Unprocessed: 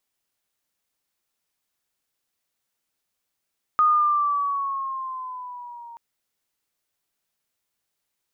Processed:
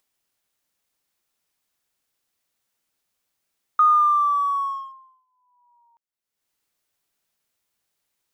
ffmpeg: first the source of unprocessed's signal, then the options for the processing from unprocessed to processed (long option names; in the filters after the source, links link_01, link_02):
-f lavfi -i "aevalsrc='pow(10,(-14-24.5*t/2.18)/20)*sin(2*PI*1240*2.18/(-5*log(2)/12)*(exp(-5*log(2)/12*t/2.18)-1))':duration=2.18:sample_rate=44100"
-filter_complex "[0:a]agate=range=-52dB:threshold=-28dB:ratio=16:detection=peak,acompressor=mode=upward:threshold=-37dB:ratio=2.5,asplit=2[link_01][link_02];[link_02]aeval=exprs='sgn(val(0))*max(abs(val(0))-0.00944,0)':channel_layout=same,volume=-8dB[link_03];[link_01][link_03]amix=inputs=2:normalize=0"